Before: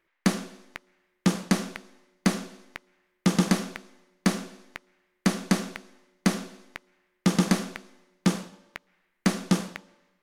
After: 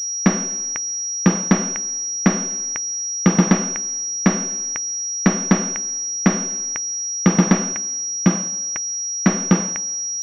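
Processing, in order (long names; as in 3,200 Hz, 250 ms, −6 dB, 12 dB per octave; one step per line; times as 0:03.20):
camcorder AGC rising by 6.7 dB per second
0:07.72–0:09.27: notch comb filter 450 Hz
switching amplifier with a slow clock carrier 5,700 Hz
level +7.5 dB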